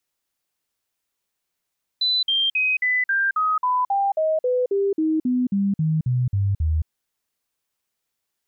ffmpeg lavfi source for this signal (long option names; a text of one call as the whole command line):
ffmpeg -f lavfi -i "aevalsrc='0.133*clip(min(mod(t,0.27),0.22-mod(t,0.27))/0.005,0,1)*sin(2*PI*4000*pow(2,-floor(t/0.27)/3)*mod(t,0.27))':duration=4.86:sample_rate=44100" out.wav